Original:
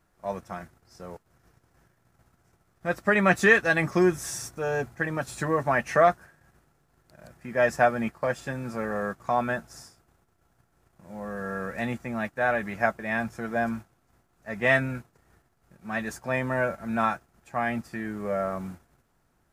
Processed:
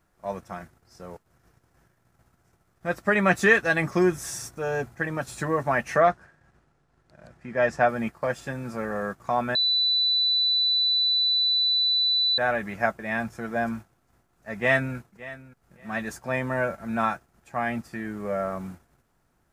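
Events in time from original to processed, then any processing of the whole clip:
5.98–7.89 s: distance through air 70 m
9.55–12.38 s: bleep 3.98 kHz -19.5 dBFS
14.55–14.96 s: echo throw 570 ms, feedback 20%, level -17.5 dB

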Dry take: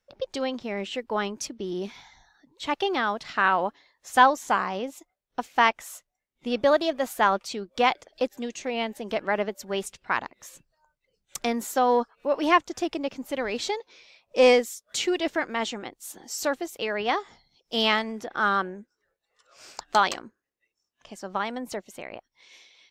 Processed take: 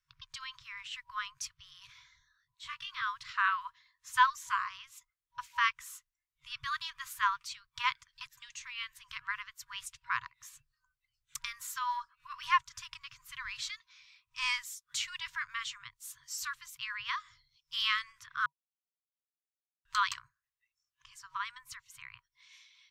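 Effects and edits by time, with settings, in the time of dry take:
1.87–3.02 s: detune thickener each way 30 cents
18.46–19.85 s: mute
whole clip: FFT band-reject 150–960 Hz; trim -6 dB

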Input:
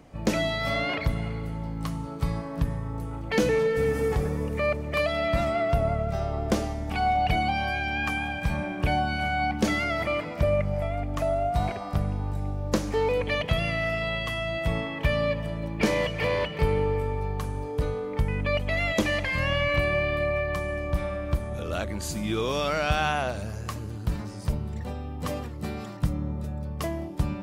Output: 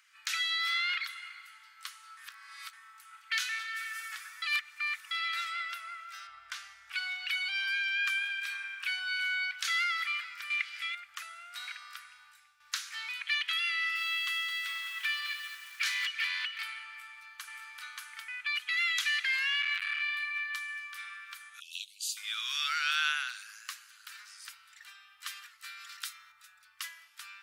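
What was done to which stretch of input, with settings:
2.17–2.73 s: reverse
4.42–5.11 s: reverse
6.27–6.93 s: tilt EQ -3 dB/octave
8.25–9.03 s: small resonant body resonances 300/2600 Hz, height 8 dB
10.50–10.95 s: frequency weighting D
12.12–12.60 s: fade out, to -10.5 dB
13.74–16.06 s: bit-crushed delay 214 ms, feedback 35%, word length 7-bit, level -8 dB
16.89–17.66 s: echo throw 580 ms, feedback 30%, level 0 dB
19.61–20.02 s: transformer saturation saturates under 590 Hz
21.60–22.17 s: steep high-pass 2.6 kHz 96 dB/octave
23.37–24.36 s: bass shelf 120 Hz -12 dB
25.89–26.32 s: treble shelf 2.1 kHz +8.5 dB
whole clip: elliptic high-pass 1.4 kHz, stop band 60 dB; dynamic bell 3.8 kHz, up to +5 dB, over -50 dBFS, Q 3

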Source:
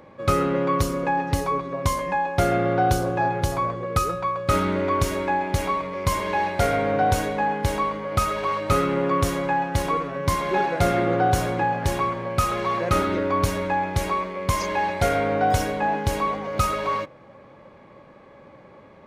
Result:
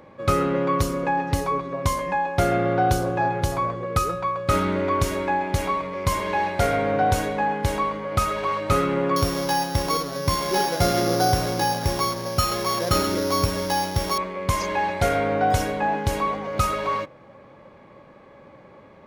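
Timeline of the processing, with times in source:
9.16–14.18 s: sorted samples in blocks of 8 samples

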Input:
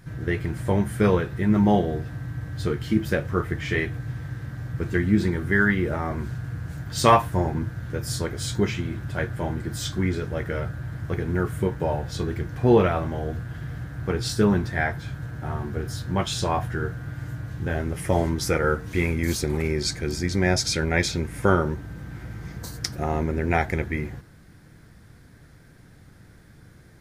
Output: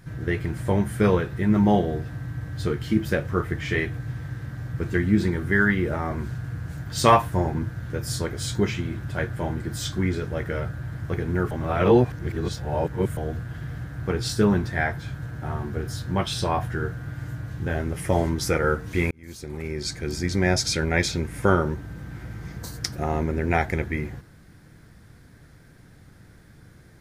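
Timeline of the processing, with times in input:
11.51–13.17 s: reverse
16.19–16.61 s: band-stop 6.9 kHz, Q 5.4
19.11–20.28 s: fade in

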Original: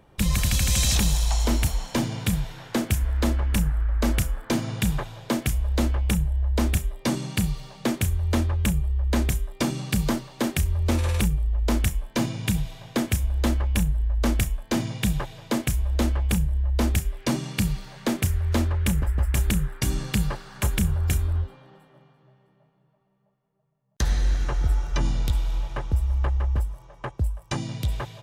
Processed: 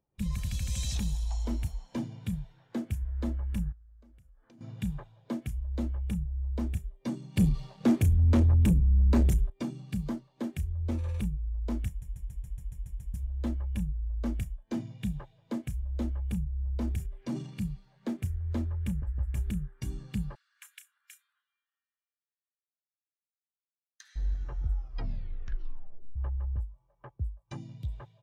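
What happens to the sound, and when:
3.72–4.61 s: compression 20:1, threshold -35 dBFS
7.36–9.50 s: waveshaping leveller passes 3
11.88 s: stutter in place 0.14 s, 9 plays
16.59–17.61 s: transient shaper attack -2 dB, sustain +6 dB
20.35–24.16 s: high-pass 1.4 kHz 24 dB/octave
24.72 s: tape stop 1.44 s
whole clip: bass shelf 78 Hz -5 dB; spectral contrast expander 1.5:1; trim -5.5 dB

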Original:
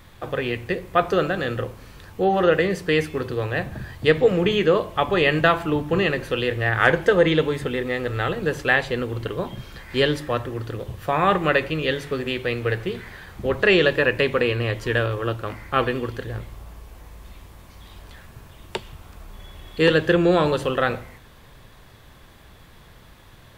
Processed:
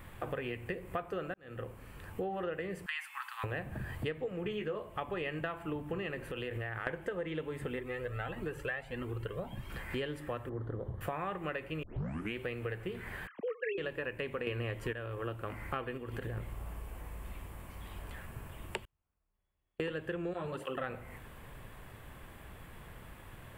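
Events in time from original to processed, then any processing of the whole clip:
1.34–2.32 s: fade in
2.86–3.44 s: steep high-pass 850 Hz 72 dB/octave
4.45–4.89 s: doubling 14 ms -5 dB
6.26–6.87 s: compression, threshold -29 dBFS
7.79–9.70 s: Shepard-style flanger rising 1.6 Hz
10.49–11.01 s: boxcar filter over 17 samples
11.83 s: tape start 0.53 s
13.27–13.78 s: formants replaced by sine waves
14.47–14.93 s: gain +10 dB
15.97–16.37 s: compression, threshold -29 dBFS
18.82–19.80 s: inverted gate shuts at -34 dBFS, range -41 dB
20.33–20.84 s: cancelling through-zero flanger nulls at 1.5 Hz, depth 5.7 ms
whole clip: high-order bell 4.8 kHz -10.5 dB 1.1 oct; compression 8:1, threshold -33 dBFS; trim -2 dB

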